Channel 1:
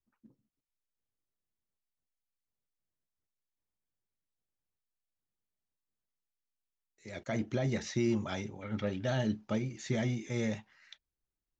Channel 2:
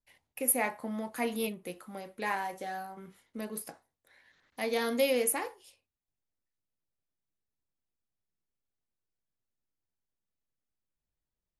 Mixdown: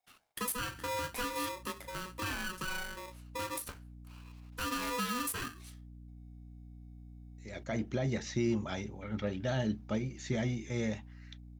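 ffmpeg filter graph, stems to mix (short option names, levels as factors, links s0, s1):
-filter_complex "[0:a]aeval=exprs='val(0)+0.00398*(sin(2*PI*60*n/s)+sin(2*PI*2*60*n/s)/2+sin(2*PI*3*60*n/s)/3+sin(2*PI*4*60*n/s)/4+sin(2*PI*5*60*n/s)/5)':c=same,adelay=400,volume=0.891[s0];[1:a]acompressor=threshold=0.0224:ratio=5,aeval=exprs='0.0891*(cos(1*acos(clip(val(0)/0.0891,-1,1)))-cos(1*PI/2))+0.0158*(cos(5*acos(clip(val(0)/0.0891,-1,1)))-cos(5*PI/2))':c=same,aeval=exprs='val(0)*sgn(sin(2*PI*740*n/s))':c=same,volume=0.668,asplit=2[s1][s2];[s2]apad=whole_len=529166[s3];[s0][s3]sidechaincompress=threshold=0.00355:ratio=8:attack=16:release=113[s4];[s4][s1]amix=inputs=2:normalize=0"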